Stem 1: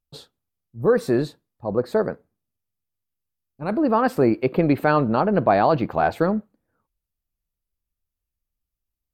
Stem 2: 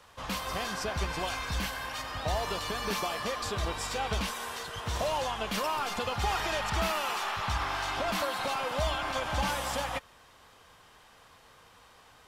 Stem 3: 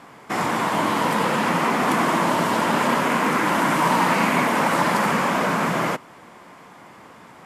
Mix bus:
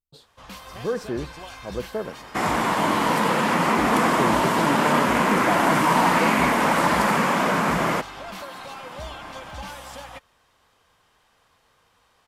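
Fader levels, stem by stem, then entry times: −8.5, −6.0, 0.0 decibels; 0.00, 0.20, 2.05 seconds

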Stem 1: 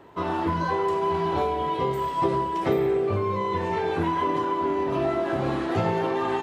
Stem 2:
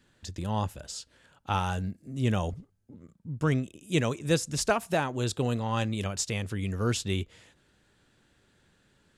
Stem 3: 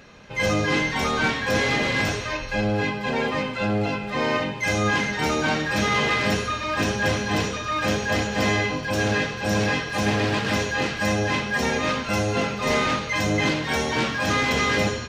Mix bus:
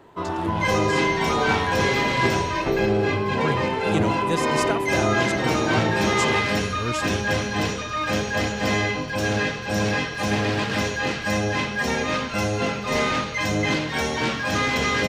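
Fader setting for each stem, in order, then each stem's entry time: −0.5, −1.0, −0.5 decibels; 0.00, 0.00, 0.25 seconds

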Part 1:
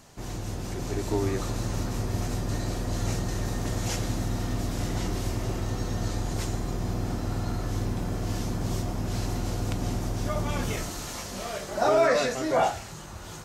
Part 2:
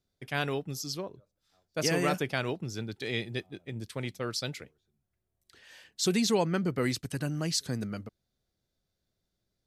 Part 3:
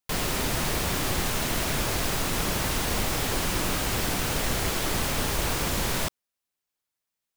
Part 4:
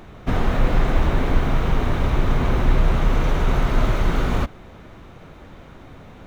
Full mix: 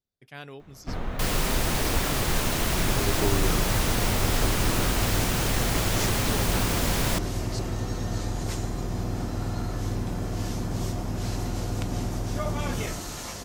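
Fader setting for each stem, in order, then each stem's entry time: 0.0, −10.5, 0.0, −11.5 decibels; 2.10, 0.00, 1.10, 0.60 seconds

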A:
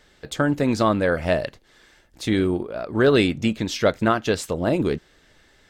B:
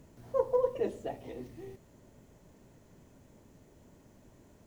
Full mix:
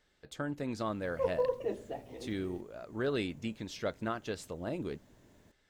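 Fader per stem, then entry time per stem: −16.0, −3.0 decibels; 0.00, 0.85 seconds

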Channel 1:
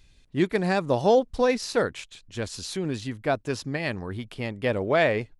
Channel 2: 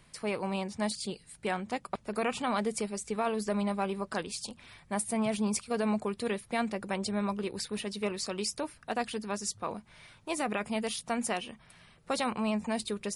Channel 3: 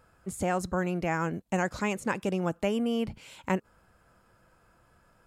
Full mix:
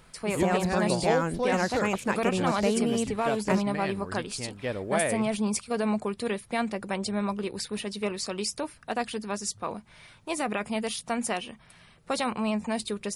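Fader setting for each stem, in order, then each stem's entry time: −6.5, +2.5, +1.0 decibels; 0.00, 0.00, 0.00 seconds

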